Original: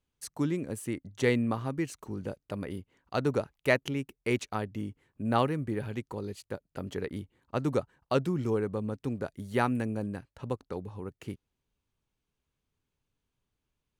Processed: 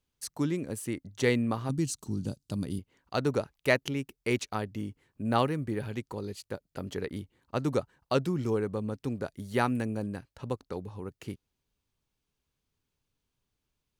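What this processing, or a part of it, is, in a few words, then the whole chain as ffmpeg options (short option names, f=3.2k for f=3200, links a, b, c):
presence and air boost: -filter_complex "[0:a]asettb=1/sr,asplit=3[a][b][c];[a]atrim=end=1.694[d];[b]atrim=start=1.69:end=2.79,asetpts=PTS-STARTPTS,afade=t=in:d=0.004:c=qsin,afade=t=out:st=1.096:d=0.004:c=qsin,equalizer=f=125:t=o:w=1:g=7,equalizer=f=250:t=o:w=1:g=5,equalizer=f=500:t=o:w=1:g=-7,equalizer=f=1k:t=o:w=1:g=-3,equalizer=f=2k:t=o:w=1:g=-11,equalizer=f=4k:t=o:w=1:g=5,equalizer=f=8k:t=o:w=1:g=8[e];[c]atrim=start=2.786[f];[d][e]acrossfade=d=0.004:c1=hsin:c2=qsin[g];[g][f]acrossfade=d=0.004:c1=qsin:c2=hsin,equalizer=f=4.8k:t=o:w=0.91:g=4,highshelf=f=9.6k:g=4"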